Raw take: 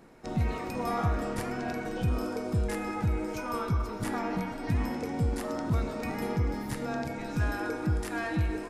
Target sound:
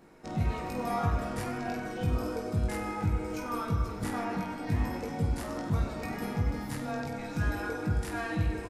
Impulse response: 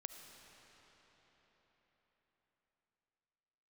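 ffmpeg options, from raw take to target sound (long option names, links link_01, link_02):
-af "aecho=1:1:20|50|95|162.5|263.8:0.631|0.398|0.251|0.158|0.1,volume=-3dB"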